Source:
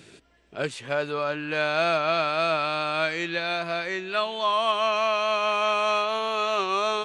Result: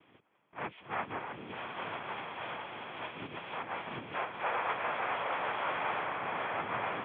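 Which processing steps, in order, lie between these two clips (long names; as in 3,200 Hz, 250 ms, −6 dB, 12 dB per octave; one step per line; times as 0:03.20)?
camcorder AGC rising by 5.2 dB per second
0:01.18–0:03.53: parametric band 890 Hz −12.5 dB 1.1 octaves
cochlear-implant simulation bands 3
Chebyshev low-pass with heavy ripple 3,400 Hz, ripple 6 dB
level −7 dB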